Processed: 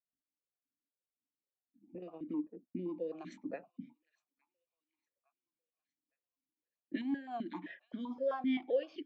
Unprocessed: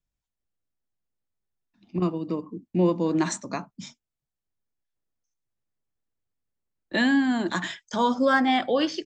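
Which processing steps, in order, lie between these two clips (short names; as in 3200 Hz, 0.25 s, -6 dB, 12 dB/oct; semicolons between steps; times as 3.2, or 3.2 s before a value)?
2.11–2.56 G.711 law mismatch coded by A; low-pass opened by the level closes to 530 Hz, open at -18 dBFS; compressor 4:1, threshold -33 dBFS, peak gain reduction 14 dB; rotary speaker horn 5 Hz; thin delay 0.861 s, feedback 44%, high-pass 1900 Hz, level -22 dB; vowel sequencer 7.7 Hz; gain +7 dB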